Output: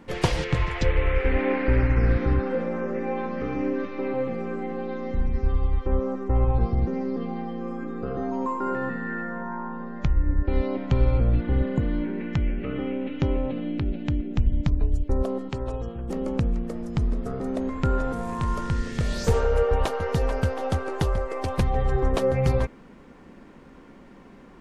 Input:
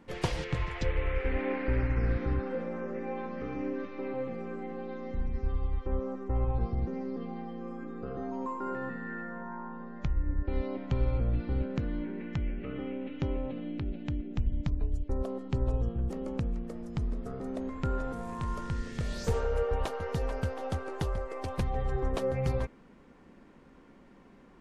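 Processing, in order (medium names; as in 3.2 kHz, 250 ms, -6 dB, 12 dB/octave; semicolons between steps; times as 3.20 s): 11.43–11.84 s: spectral replace 1.1–6.6 kHz after; 15.49–16.09 s: bass shelf 320 Hz -11.5 dB; trim +8 dB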